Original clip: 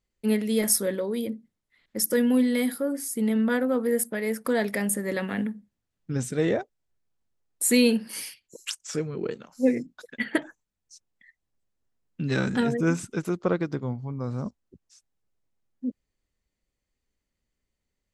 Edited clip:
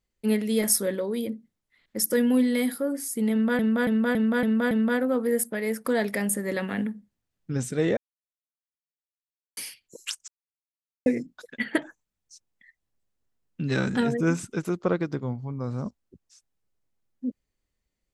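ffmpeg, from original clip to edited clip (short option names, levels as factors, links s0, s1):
-filter_complex "[0:a]asplit=10[s0][s1][s2][s3][s4][s5][s6][s7][s8][s9];[s0]atrim=end=3.592[s10];[s1]atrim=start=3.308:end=3.592[s11];[s2]atrim=start=3.308:end=3.592[s12];[s3]atrim=start=3.308:end=3.592[s13];[s4]atrim=start=3.308:end=3.592[s14];[s5]atrim=start=3.308:end=6.57,asetpts=PTS-STARTPTS,afade=t=out:st=3.258:d=0.004:c=hsin[s15];[s6]atrim=start=6.57:end=8.17,asetpts=PTS-STARTPTS,volume=0[s16];[s7]atrim=start=8.17:end=8.88,asetpts=PTS-STARTPTS,afade=t=in:d=0.004:c=hsin,afade=t=out:st=0.706:d=0.004:c=hsin[s17];[s8]atrim=start=8.88:end=9.66,asetpts=PTS-STARTPTS,volume=0[s18];[s9]atrim=start=9.66,asetpts=PTS-STARTPTS,afade=t=in:d=0.004:c=hsin[s19];[s10][s11]acrossfade=d=0.004:c1=hsin:c2=hsin[s20];[s20][s12]acrossfade=d=0.004:c1=hsin:c2=hsin[s21];[s21][s13]acrossfade=d=0.004:c1=hsin:c2=hsin[s22];[s22][s14]acrossfade=d=0.004:c1=hsin:c2=hsin[s23];[s15][s16][s17][s18][s19]concat=n=5:v=0:a=1[s24];[s23][s24]acrossfade=d=0.004:c1=hsin:c2=hsin"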